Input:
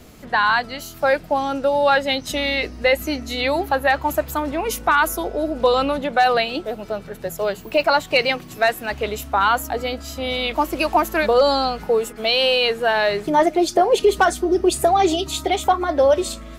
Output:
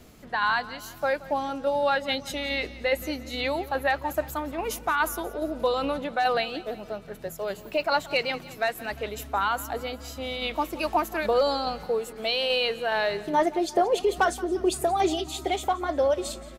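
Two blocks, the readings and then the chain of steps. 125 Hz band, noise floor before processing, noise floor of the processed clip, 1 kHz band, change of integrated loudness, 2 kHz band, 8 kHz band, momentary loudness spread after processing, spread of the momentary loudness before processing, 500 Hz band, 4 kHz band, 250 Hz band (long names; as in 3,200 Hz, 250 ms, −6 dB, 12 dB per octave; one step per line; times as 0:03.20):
−7.5 dB, −39 dBFS, −44 dBFS, −7.5 dB, −7.5 dB, −7.5 dB, −7.5 dB, 9 LU, 8 LU, −7.5 dB, −7.5 dB, −7.5 dB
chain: shaped tremolo saw down 2.4 Hz, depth 35%
on a send: repeating echo 175 ms, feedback 52%, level −18.5 dB
on the sum: level −6 dB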